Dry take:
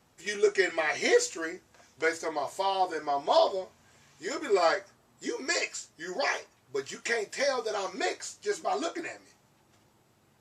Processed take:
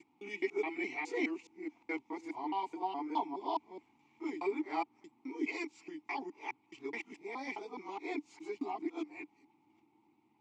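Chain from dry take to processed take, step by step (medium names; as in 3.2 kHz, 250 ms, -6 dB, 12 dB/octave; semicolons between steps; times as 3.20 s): time reversed locally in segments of 210 ms; vowel filter u; trim +6 dB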